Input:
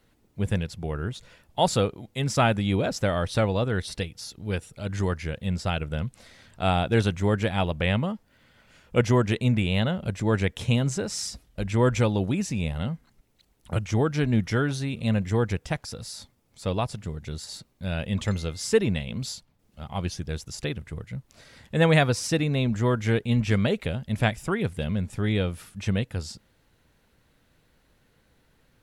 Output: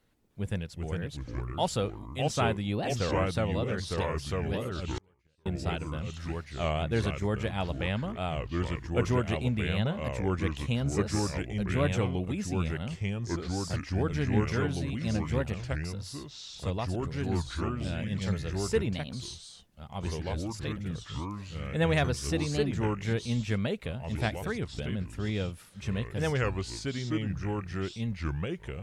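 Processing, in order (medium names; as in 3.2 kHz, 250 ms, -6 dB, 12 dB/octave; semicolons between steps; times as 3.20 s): ever faster or slower copies 308 ms, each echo -3 st, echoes 2; 4.98–5.46 s: inverted gate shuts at -20 dBFS, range -35 dB; warped record 33 1/3 rpm, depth 250 cents; trim -7 dB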